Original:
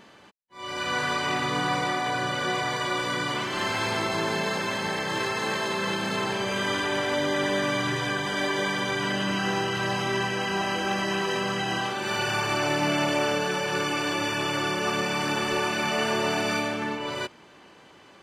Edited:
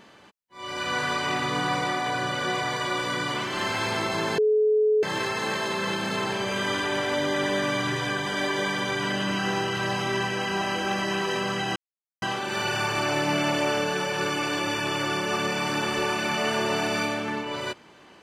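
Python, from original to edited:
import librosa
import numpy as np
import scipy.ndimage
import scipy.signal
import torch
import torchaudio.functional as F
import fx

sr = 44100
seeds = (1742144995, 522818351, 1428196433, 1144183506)

y = fx.edit(x, sr, fx.bleep(start_s=4.38, length_s=0.65, hz=428.0, db=-17.5),
    fx.insert_silence(at_s=11.76, length_s=0.46), tone=tone)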